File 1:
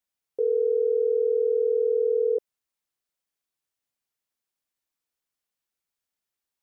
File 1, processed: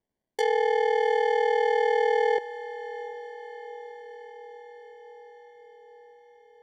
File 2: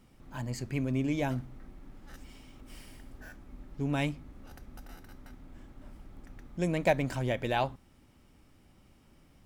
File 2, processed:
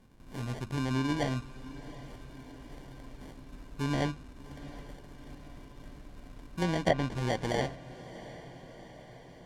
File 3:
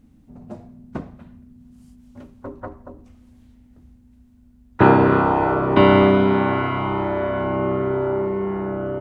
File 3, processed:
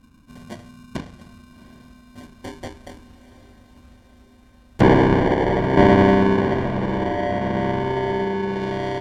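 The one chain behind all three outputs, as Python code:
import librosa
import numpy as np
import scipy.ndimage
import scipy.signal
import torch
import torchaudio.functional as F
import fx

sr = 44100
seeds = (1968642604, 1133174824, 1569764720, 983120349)

y = fx.sample_hold(x, sr, seeds[0], rate_hz=1300.0, jitter_pct=0)
y = fx.env_lowpass_down(y, sr, base_hz=1900.0, full_db=-19.5)
y = fx.echo_diffused(y, sr, ms=739, feedback_pct=64, wet_db=-16)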